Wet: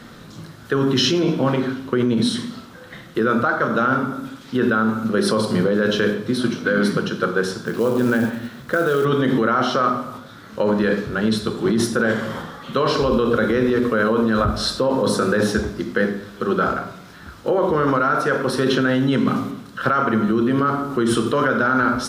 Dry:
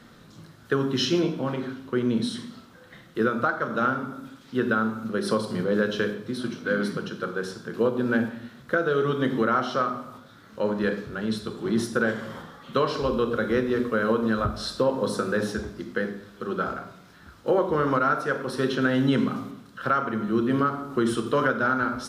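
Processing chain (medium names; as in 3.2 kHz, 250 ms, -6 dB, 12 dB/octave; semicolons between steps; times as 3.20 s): in parallel at +2 dB: compressor with a negative ratio -26 dBFS, ratio -0.5; 7.66–9.05 s: on the sum: companded quantiser 6-bit; trim +1 dB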